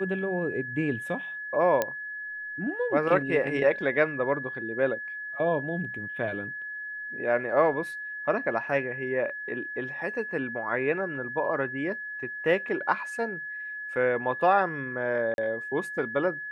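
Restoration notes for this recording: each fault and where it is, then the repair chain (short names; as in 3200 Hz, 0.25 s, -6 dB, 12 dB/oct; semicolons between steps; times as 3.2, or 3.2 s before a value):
tone 1700 Hz -34 dBFS
1.82 pop -11 dBFS
15.34–15.38 gap 41 ms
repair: de-click; notch 1700 Hz, Q 30; interpolate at 15.34, 41 ms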